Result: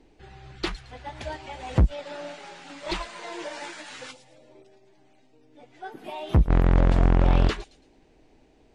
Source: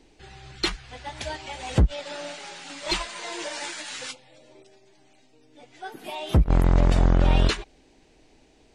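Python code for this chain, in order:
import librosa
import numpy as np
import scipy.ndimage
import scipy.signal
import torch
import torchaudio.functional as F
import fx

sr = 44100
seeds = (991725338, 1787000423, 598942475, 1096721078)

y = fx.high_shelf(x, sr, hz=2700.0, db=-11.0)
y = fx.echo_wet_highpass(y, sr, ms=111, feedback_pct=33, hz=5300.0, wet_db=-8.5)
y = fx.doppler_dist(y, sr, depth_ms=0.64)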